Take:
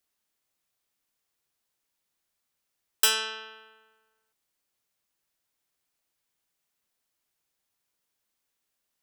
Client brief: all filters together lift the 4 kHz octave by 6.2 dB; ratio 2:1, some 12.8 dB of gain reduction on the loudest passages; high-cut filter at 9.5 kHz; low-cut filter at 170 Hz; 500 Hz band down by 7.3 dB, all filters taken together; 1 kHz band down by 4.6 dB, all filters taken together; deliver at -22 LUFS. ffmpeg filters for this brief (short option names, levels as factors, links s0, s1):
-af "highpass=170,lowpass=9500,equalizer=f=500:t=o:g=-7.5,equalizer=f=1000:t=o:g=-5.5,equalizer=f=4000:t=o:g=9,acompressor=threshold=0.0112:ratio=2,volume=4.47"